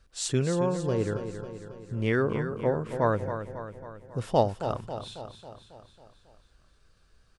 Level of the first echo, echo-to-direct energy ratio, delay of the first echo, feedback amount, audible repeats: -9.5 dB, -8.0 dB, 273 ms, 57%, 6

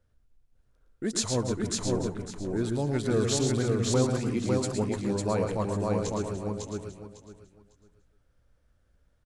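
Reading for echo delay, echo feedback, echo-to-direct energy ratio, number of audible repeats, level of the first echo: 112 ms, no regular repeats, 0.0 dB, 9, -8.0 dB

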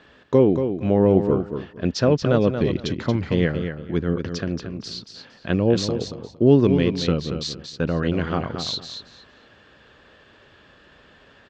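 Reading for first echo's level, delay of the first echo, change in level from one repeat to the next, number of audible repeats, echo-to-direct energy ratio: -8.0 dB, 230 ms, -14.0 dB, 2, -8.0 dB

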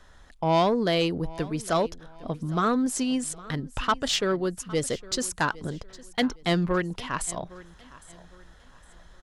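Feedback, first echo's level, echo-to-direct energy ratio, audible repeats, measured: 32%, -20.0 dB, -19.5 dB, 2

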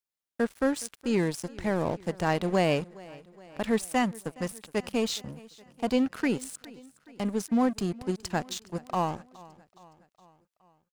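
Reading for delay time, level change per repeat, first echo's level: 417 ms, -4.5 dB, -21.5 dB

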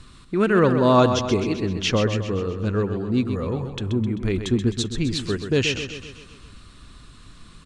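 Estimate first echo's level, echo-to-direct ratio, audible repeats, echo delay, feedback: -8.5 dB, -7.0 dB, 6, 130 ms, 55%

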